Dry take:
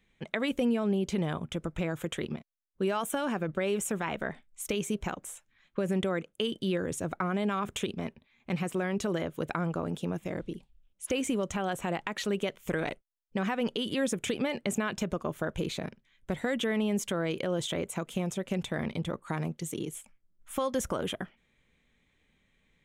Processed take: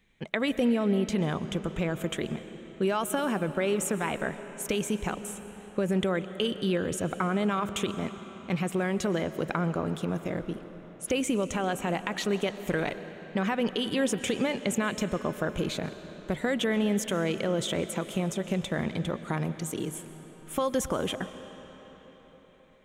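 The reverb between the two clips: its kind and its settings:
comb and all-pass reverb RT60 4.8 s, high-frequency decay 0.75×, pre-delay 85 ms, DRR 11.5 dB
level +2.5 dB

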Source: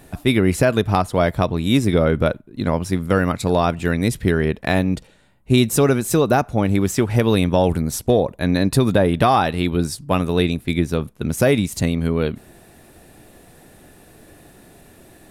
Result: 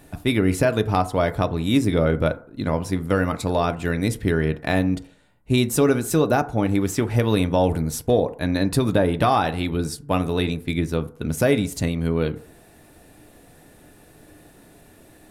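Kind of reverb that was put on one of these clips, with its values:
feedback delay network reverb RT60 0.5 s, low-frequency decay 0.75×, high-frequency decay 0.3×, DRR 9.5 dB
level −3.5 dB

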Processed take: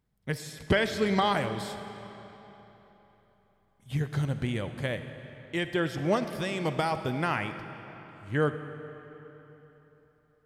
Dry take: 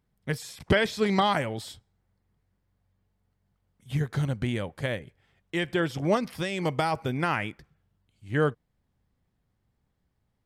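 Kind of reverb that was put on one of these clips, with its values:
comb and all-pass reverb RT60 3.7 s, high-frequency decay 0.8×, pre-delay 15 ms, DRR 9 dB
level −2 dB

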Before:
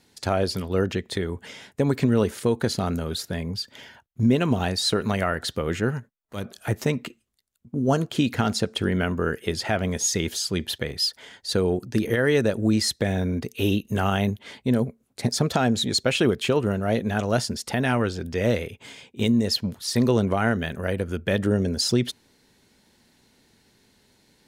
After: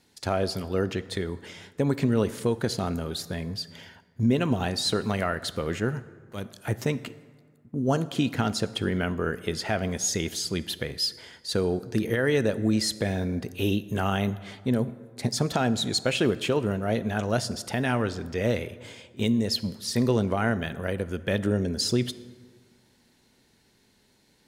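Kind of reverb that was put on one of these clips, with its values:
dense smooth reverb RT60 1.8 s, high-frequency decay 0.55×, DRR 15 dB
level −3 dB

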